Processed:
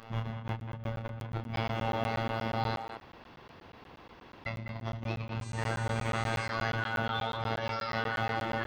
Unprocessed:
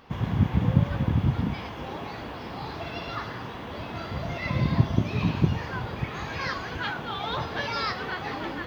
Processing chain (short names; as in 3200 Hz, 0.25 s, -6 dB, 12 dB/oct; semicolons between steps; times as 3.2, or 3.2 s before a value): high shelf 3900 Hz -6.5 dB; negative-ratio compressor -35 dBFS, ratio -1; robotiser 113 Hz; 5.41–6.46 buzz 400 Hz, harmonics 22, -53 dBFS 0 dB/oct; doubler 28 ms -4 dB; 2.77–4.46 room tone; speakerphone echo 0.2 s, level -7 dB; crackling interface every 0.12 s, samples 512, zero, from 0.48